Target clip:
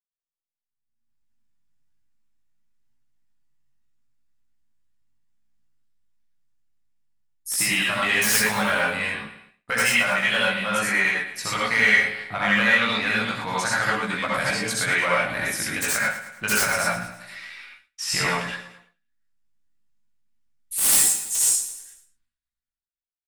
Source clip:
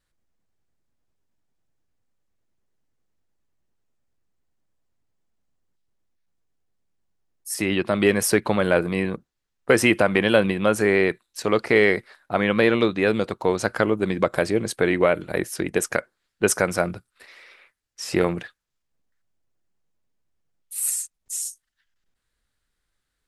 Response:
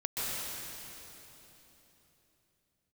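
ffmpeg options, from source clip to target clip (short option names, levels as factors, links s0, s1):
-filter_complex "[0:a]flanger=delay=2.6:depth=8.7:regen=89:speed=1.3:shape=sinusoidal,acrossover=split=310|5200[s0][s1][s2];[s0]acompressor=threshold=0.00794:ratio=6[s3];[s1]highpass=1100[s4];[s2]aeval=exprs='(mod(15.8*val(0)+1,2)-1)/15.8':c=same[s5];[s3][s4][s5]amix=inputs=3:normalize=0,dynaudnorm=f=220:g=7:m=6.68,aecho=1:1:108|216|324|432|540:0.224|0.107|0.0516|0.0248|0.0119,agate=range=0.0224:threshold=0.00562:ratio=3:detection=peak,flanger=delay=15.5:depth=3.5:speed=0.28,asplit=2[s6][s7];[s7]asoftclip=type=tanh:threshold=0.119,volume=0.708[s8];[s6][s8]amix=inputs=2:normalize=0[s9];[1:a]atrim=start_sample=2205,afade=t=out:st=0.3:d=0.01,atrim=end_sample=13671,asetrate=88200,aresample=44100[s10];[s9][s10]afir=irnorm=-1:irlink=0"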